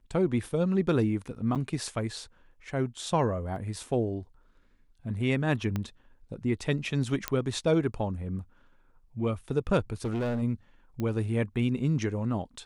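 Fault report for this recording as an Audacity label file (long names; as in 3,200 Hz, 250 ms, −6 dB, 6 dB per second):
1.550000	1.560000	drop-out 7.5 ms
3.560000	3.560000	drop-out 2.4 ms
5.760000	5.760000	click −18 dBFS
7.280000	7.280000	click −10 dBFS
10.040000	10.430000	clipping −26.5 dBFS
11.000000	11.000000	click −21 dBFS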